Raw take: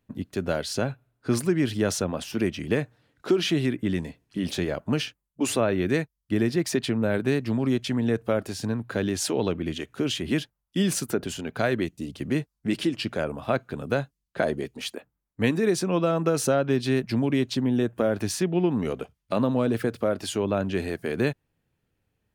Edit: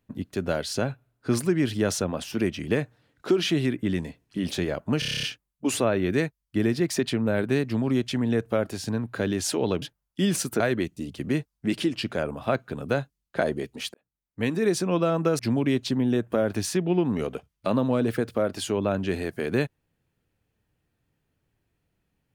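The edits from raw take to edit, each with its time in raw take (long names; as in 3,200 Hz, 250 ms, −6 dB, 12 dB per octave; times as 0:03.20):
0:04.99: stutter 0.03 s, 9 plays
0:09.58–0:10.39: remove
0:11.17–0:11.61: remove
0:14.95–0:15.71: fade in
0:16.40–0:17.05: remove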